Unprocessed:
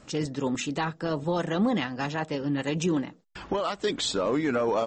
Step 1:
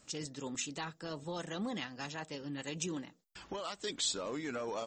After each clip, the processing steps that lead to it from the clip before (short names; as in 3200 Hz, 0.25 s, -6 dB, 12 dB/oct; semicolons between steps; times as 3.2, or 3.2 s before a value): pre-emphasis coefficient 0.8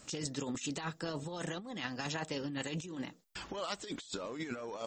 negative-ratio compressor -42 dBFS, ratio -0.5; gain +3.5 dB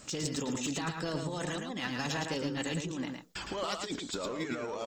in parallel at -4 dB: hard clip -37 dBFS, distortion -10 dB; on the sum: echo 0.111 s -5 dB